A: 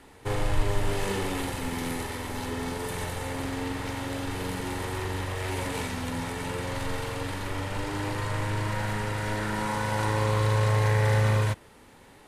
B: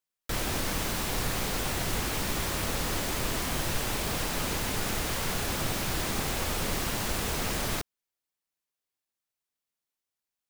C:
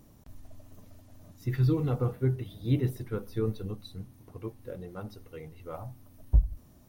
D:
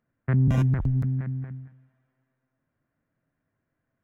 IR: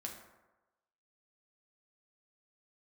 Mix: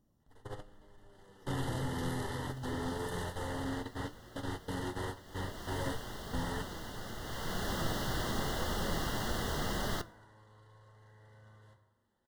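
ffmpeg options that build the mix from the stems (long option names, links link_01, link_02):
-filter_complex "[0:a]alimiter=limit=-23dB:level=0:latency=1:release=11,adelay=200,volume=-0.5dB,asplit=2[link_01][link_02];[link_02]volume=-22dB[link_03];[1:a]equalizer=frequency=8600:width_type=o:width=1.3:gain=-4,adelay=2200,afade=type=in:start_time=5.24:duration=0.44:silence=0.251189,afade=type=in:start_time=7.19:duration=0.5:silence=0.375837,asplit=2[link_04][link_05];[link_05]volume=-10dB[link_06];[2:a]aeval=exprs='clip(val(0),-1,0.0211)':channel_layout=same,volume=-13.5dB,asplit=3[link_07][link_08][link_09];[link_08]volume=-9.5dB[link_10];[3:a]acompressor=threshold=-24dB:ratio=6,adelay=1200,volume=-10.5dB[link_11];[link_09]apad=whole_len=550164[link_12];[link_01][link_12]sidechaingate=range=-34dB:threshold=-56dB:ratio=16:detection=peak[link_13];[4:a]atrim=start_sample=2205[link_14];[link_03][link_06][link_10]amix=inputs=3:normalize=0[link_15];[link_15][link_14]afir=irnorm=-1:irlink=0[link_16];[link_13][link_04][link_07][link_11][link_16]amix=inputs=5:normalize=0,highshelf=frequency=7200:gain=-7.5,flanger=delay=4.8:depth=3.8:regen=82:speed=0.91:shape=triangular,asuperstop=centerf=2400:order=12:qfactor=3.3"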